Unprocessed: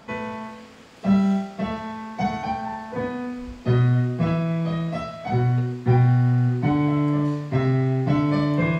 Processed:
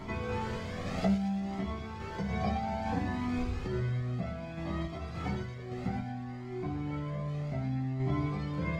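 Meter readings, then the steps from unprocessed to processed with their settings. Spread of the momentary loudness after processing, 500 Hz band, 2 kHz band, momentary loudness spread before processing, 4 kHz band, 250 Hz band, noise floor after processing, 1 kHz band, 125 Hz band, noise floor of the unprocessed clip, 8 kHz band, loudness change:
7 LU, -10.5 dB, -9.5 dB, 12 LU, -7.5 dB, -11.0 dB, -41 dBFS, -9.5 dB, -13.5 dB, -43 dBFS, n/a, -12.0 dB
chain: per-bin compression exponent 0.6; recorder AGC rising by 6.5 dB/s; low shelf 180 Hz +8 dB; notches 60/120 Hz; compressor, threshold -19 dBFS, peak gain reduction 10 dB; random-step tremolo; chorus voices 6, 0.3 Hz, delay 13 ms, depth 2.6 ms; thin delay 0.116 s, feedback 56%, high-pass 2600 Hz, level -4.5 dB; cascading flanger rising 0.62 Hz

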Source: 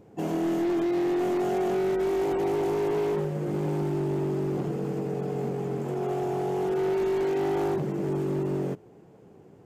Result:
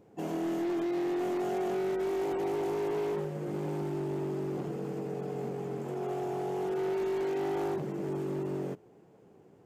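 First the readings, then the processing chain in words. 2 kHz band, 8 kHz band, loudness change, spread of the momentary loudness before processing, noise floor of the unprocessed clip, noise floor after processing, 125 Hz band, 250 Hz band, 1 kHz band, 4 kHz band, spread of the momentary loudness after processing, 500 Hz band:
-4.5 dB, n/a, -5.5 dB, 5 LU, -53 dBFS, -59 dBFS, -7.5 dB, -6.0 dB, -4.5 dB, -4.5 dB, 5 LU, -5.5 dB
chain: low shelf 160 Hz -6 dB; gain -4.5 dB

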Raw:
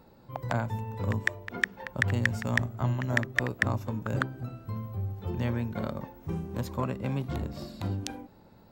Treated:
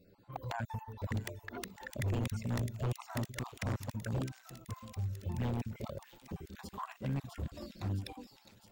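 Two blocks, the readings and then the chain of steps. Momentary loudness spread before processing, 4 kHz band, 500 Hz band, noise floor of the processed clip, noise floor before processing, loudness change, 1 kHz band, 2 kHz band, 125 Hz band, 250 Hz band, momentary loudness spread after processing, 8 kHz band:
10 LU, -7.5 dB, -8.5 dB, -64 dBFS, -56 dBFS, -8.0 dB, -7.5 dB, -17.0 dB, -6.0 dB, -7.5 dB, 11 LU, -4.5 dB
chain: random spectral dropouts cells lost 34%; envelope flanger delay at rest 11.8 ms, full sweep at -25 dBFS; wavefolder -25.5 dBFS; on a send: thin delay 0.66 s, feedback 66%, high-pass 3600 Hz, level -4 dB; on the sum: gain -2.5 dB

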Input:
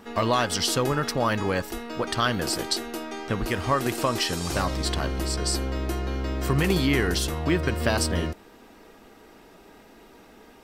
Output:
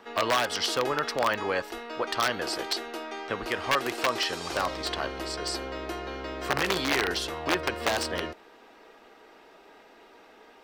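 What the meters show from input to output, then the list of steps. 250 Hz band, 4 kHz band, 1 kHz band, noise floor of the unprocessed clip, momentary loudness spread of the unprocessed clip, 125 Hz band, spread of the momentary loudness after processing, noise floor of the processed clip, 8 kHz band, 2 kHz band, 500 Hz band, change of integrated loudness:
-8.5 dB, -1.0 dB, -1.0 dB, -51 dBFS, 7 LU, -15.5 dB, 10 LU, -54 dBFS, -6.0 dB, +0.5 dB, -2.5 dB, -3.0 dB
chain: wrapped overs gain 14 dB; three-band isolator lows -16 dB, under 350 Hz, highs -12 dB, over 5200 Hz

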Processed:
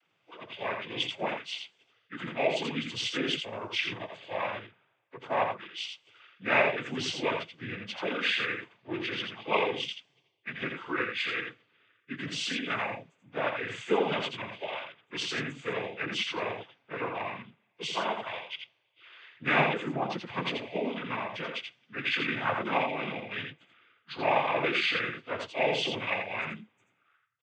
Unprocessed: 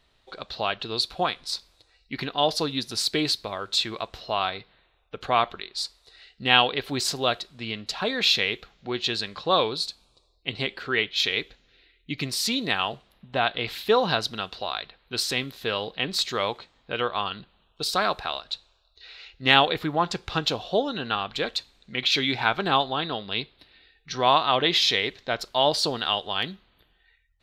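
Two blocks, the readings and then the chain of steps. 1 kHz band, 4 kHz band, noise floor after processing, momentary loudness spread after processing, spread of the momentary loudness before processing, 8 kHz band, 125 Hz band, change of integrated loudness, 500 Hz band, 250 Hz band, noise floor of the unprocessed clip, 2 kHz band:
-7.0 dB, -10.0 dB, -73 dBFS, 14 LU, 13 LU, -12.0 dB, -5.5 dB, -6.5 dB, -4.5 dB, -4.5 dB, -66 dBFS, -2.5 dB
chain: inharmonic rescaling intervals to 87%; noise vocoder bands 16; echo 84 ms -5.5 dB; gain -4.5 dB

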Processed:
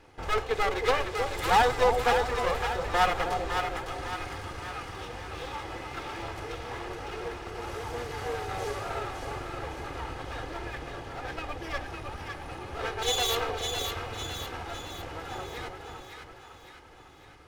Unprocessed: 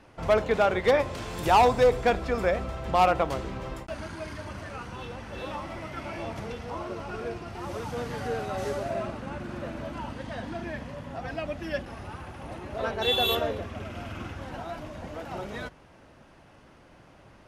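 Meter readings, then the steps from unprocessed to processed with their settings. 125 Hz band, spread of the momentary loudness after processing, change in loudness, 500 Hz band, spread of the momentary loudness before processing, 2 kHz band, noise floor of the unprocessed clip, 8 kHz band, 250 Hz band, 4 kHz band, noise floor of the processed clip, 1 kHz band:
-3.0 dB, 14 LU, -2.0 dB, -4.0 dB, 16 LU, +1.5 dB, -54 dBFS, +7.5 dB, -6.5 dB, 0.0 dB, -51 dBFS, -1.0 dB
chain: minimum comb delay 2.4 ms; dynamic EQ 210 Hz, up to -8 dB, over -44 dBFS, Q 0.73; split-band echo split 820 Hz, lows 0.316 s, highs 0.556 s, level -5 dB

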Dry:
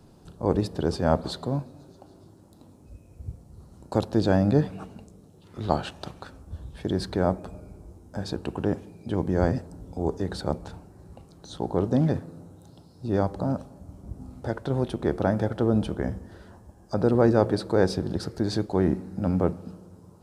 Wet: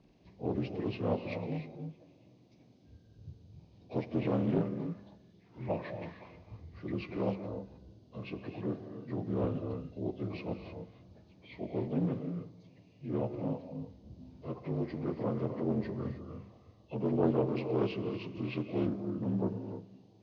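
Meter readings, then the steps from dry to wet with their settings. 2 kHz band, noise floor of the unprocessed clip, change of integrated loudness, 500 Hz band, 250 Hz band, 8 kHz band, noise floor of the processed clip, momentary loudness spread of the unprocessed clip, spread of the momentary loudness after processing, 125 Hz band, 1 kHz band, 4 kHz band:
-10.0 dB, -53 dBFS, -9.5 dB, -9.5 dB, -8.0 dB, under -25 dB, -62 dBFS, 19 LU, 18 LU, -9.0 dB, -12.0 dB, -14.0 dB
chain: inharmonic rescaling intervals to 80%; non-linear reverb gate 0.33 s rising, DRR 6.5 dB; Doppler distortion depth 0.39 ms; gain -8 dB

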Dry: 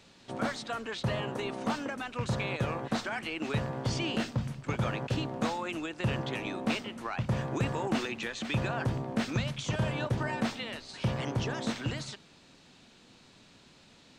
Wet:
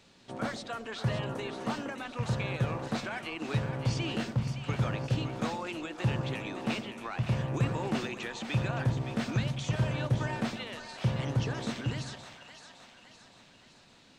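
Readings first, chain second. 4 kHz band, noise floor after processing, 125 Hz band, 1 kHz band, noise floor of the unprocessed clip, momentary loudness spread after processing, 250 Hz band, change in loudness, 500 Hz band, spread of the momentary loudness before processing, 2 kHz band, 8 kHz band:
-2.0 dB, -59 dBFS, +2.5 dB, -2.0 dB, -58 dBFS, 8 LU, -1.0 dB, 0.0 dB, -1.5 dB, 4 LU, -2.0 dB, -2.0 dB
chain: split-band echo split 660 Hz, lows 0.11 s, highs 0.565 s, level -9 dB; dynamic EQ 130 Hz, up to +6 dB, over -42 dBFS, Q 2.1; gain -2.5 dB

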